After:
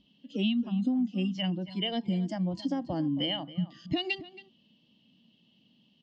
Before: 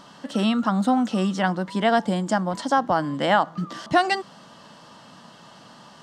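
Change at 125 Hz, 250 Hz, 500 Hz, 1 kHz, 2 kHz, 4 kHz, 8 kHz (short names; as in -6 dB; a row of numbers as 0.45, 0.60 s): -4.0 dB, -5.5 dB, -13.5 dB, -21.5 dB, -14.0 dB, -1.5 dB, under -20 dB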